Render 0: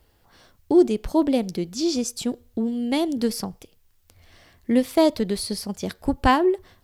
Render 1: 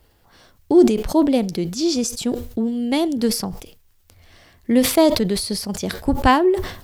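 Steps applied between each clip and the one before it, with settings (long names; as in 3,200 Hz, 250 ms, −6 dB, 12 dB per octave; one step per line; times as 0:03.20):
level that may fall only so fast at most 88 dB per second
level +3 dB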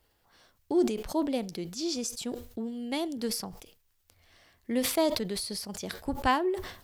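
low-shelf EQ 400 Hz −6.5 dB
level −9 dB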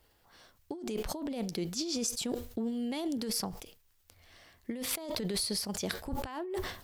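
compressor whose output falls as the input rises −34 dBFS, ratio −1
level −1 dB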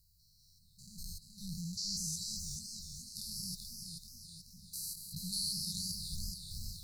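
spectrum averaged block by block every 200 ms
linear-phase brick-wall band-stop 190–3,900 Hz
feedback echo with a swinging delay time 429 ms, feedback 52%, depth 144 cents, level −5 dB
level +2 dB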